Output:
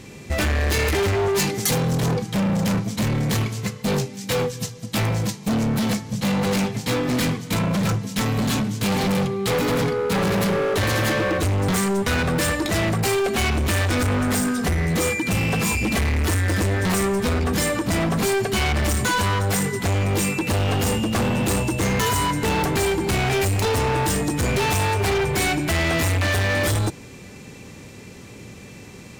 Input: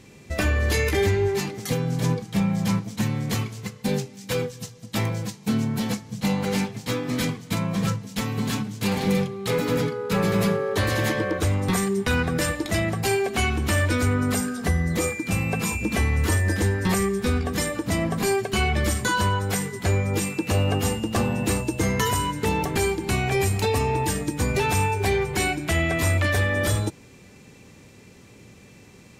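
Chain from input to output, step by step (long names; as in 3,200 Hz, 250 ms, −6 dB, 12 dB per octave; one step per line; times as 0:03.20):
gain into a clipping stage and back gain 27 dB
0:01.36–0:01.95: high-shelf EQ 4,100 Hz +7 dB
level +8 dB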